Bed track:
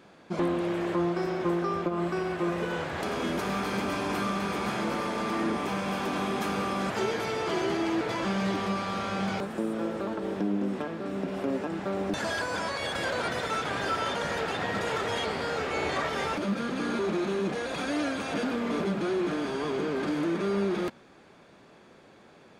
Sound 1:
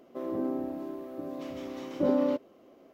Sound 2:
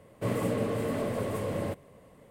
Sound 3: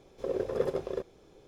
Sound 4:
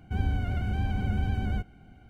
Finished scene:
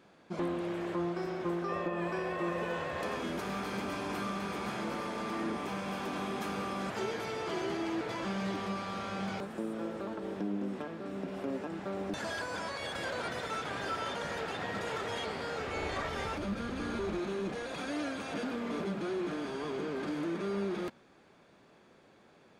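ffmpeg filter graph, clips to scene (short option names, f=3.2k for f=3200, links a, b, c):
-filter_complex "[4:a]asplit=2[a][b];[0:a]volume=-6.5dB[c];[a]highpass=f=230:t=q:w=0.5412,highpass=f=230:t=q:w=1.307,lowpass=f=2.6k:t=q:w=0.5176,lowpass=f=2.6k:t=q:w=0.7071,lowpass=f=2.6k:t=q:w=1.932,afreqshift=300[d];[b]acompressor=threshold=-38dB:ratio=6:attack=3.2:release=140:knee=1:detection=peak[e];[d]atrim=end=2.09,asetpts=PTS-STARTPTS,volume=-0.5dB,afade=t=in:d=0.004:c=hsin,afade=t=out:st=2.086:d=0.004:c=hsin,adelay=1570[f];[e]atrim=end=2.09,asetpts=PTS-STARTPTS,volume=-6dB,afade=t=in:d=0.004:c=hsin,afade=t=out:st=2.086:d=0.004:c=hsin,adelay=15570[g];[c][f][g]amix=inputs=3:normalize=0"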